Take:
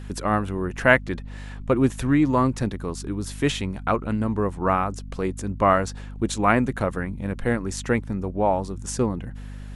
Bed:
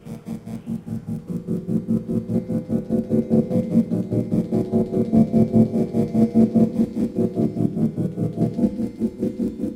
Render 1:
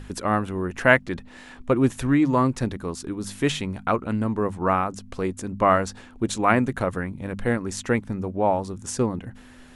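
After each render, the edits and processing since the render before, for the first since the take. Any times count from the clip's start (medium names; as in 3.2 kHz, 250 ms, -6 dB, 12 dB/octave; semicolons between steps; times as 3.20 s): de-hum 50 Hz, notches 4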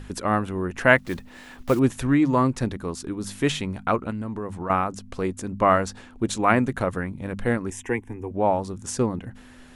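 0.98–1.81 s: block-companded coder 5-bit; 4.10–4.70 s: compression, threshold -27 dBFS; 7.70–8.31 s: static phaser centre 880 Hz, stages 8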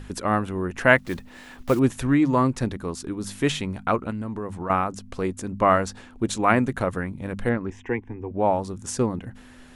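7.49–8.39 s: distance through air 210 m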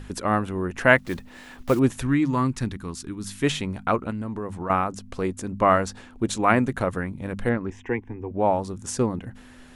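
2.01–3.42 s: peaking EQ 570 Hz -8 dB -> -14 dB 1.2 oct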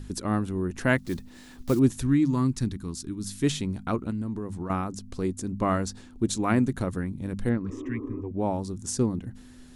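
7.68–8.19 s: spectral replace 240–1300 Hz before; high-order bell 1.2 kHz -9 dB 3 oct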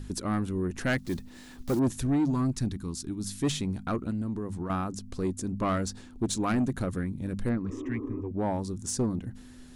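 saturation -20.5 dBFS, distortion -11 dB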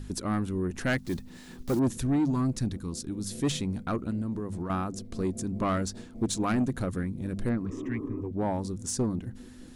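add bed -27 dB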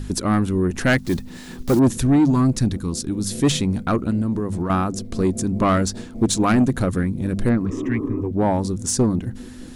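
trim +10 dB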